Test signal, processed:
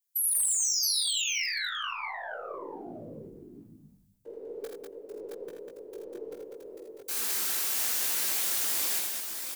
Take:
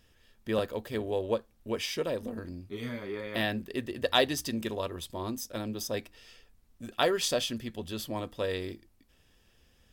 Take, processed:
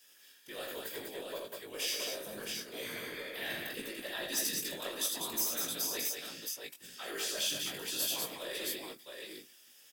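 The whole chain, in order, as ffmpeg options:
ffmpeg -i in.wav -filter_complex "[0:a]highpass=frequency=260:width=0.5412,highpass=frequency=260:width=1.3066,acrossover=split=2500[link_01][link_02];[link_02]acompressor=threshold=-36dB:ratio=4:attack=1:release=60[link_03];[link_01][link_03]amix=inputs=2:normalize=0,equalizer=frequency=1600:width_type=o:width=0.31:gain=3,areverse,acompressor=threshold=-35dB:ratio=10,areverse,afftfilt=real='hypot(re,im)*cos(2*PI*random(0))':imag='hypot(re,im)*sin(2*PI*random(1))':win_size=512:overlap=0.75,aeval=exprs='0.0251*(cos(1*acos(clip(val(0)/0.0251,-1,1)))-cos(1*PI/2))+0.000794*(cos(2*acos(clip(val(0)/0.0251,-1,1)))-cos(2*PI/2))':channel_layout=same,crystalizer=i=9:c=0,flanger=delay=17:depth=3.5:speed=0.72,volume=26dB,asoftclip=hard,volume=-26dB,aecho=1:1:48|81|197|671:0.355|0.562|0.631|0.631" out.wav

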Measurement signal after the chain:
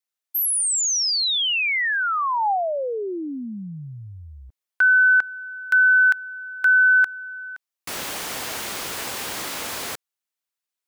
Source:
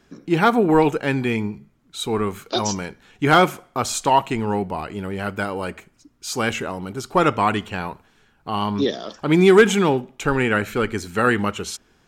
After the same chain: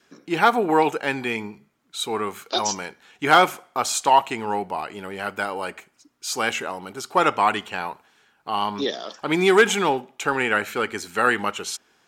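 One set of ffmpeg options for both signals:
ffmpeg -i in.wav -af "highpass=frequency=640:poles=1,adynamicequalizer=threshold=0.0126:dfrequency=810:dqfactor=4.5:tfrequency=810:tqfactor=4.5:attack=5:release=100:ratio=0.375:range=2:mode=boostabove:tftype=bell,volume=1dB" out.wav

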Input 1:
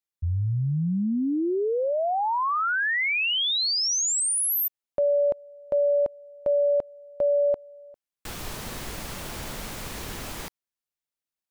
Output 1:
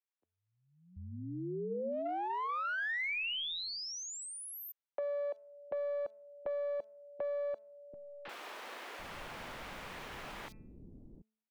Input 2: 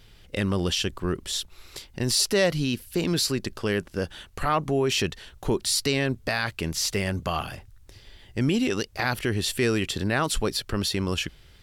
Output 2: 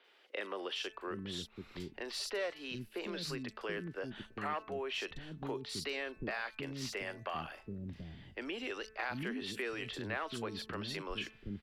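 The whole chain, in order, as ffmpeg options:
ffmpeg -i in.wav -filter_complex "[0:a]bandreject=frequency=218.5:width_type=h:width=4,bandreject=frequency=437:width_type=h:width=4,bandreject=frequency=655.5:width_type=h:width=4,bandreject=frequency=874:width_type=h:width=4,bandreject=frequency=1092.5:width_type=h:width=4,bandreject=frequency=1311:width_type=h:width=4,bandreject=frequency=1529.5:width_type=h:width=4,bandreject=frequency=1748:width_type=h:width=4,bandreject=frequency=1966.5:width_type=h:width=4,bandreject=frequency=2185:width_type=h:width=4,bandreject=frequency=2403.5:width_type=h:width=4,bandreject=frequency=2622:width_type=h:width=4,acrossover=split=140|520|2700[link_01][link_02][link_03][link_04];[link_03]aeval=exprs='clip(val(0),-1,0.0473)':channel_layout=same[link_05];[link_01][link_02][link_05][link_04]amix=inputs=4:normalize=0,acrossover=split=260 4000:gain=0.0708 1 0.141[link_06][link_07][link_08];[link_06][link_07][link_08]amix=inputs=3:normalize=0,acrossover=split=310|4200[link_09][link_10][link_11];[link_11]adelay=40[link_12];[link_09]adelay=730[link_13];[link_13][link_10][link_12]amix=inputs=3:normalize=0,acompressor=threshold=-34dB:ratio=2:attack=17:release=582:knee=6:detection=peak,asubboost=boost=3.5:cutoff=170,volume=-4dB" out.wav

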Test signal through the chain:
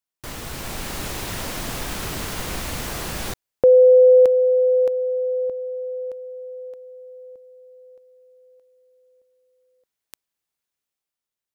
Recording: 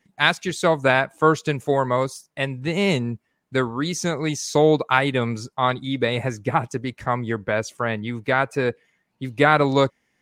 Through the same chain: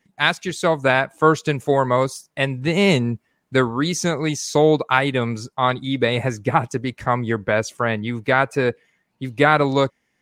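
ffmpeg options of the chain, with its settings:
ffmpeg -i in.wav -af "dynaudnorm=framelen=110:gausssize=13:maxgain=5dB" out.wav

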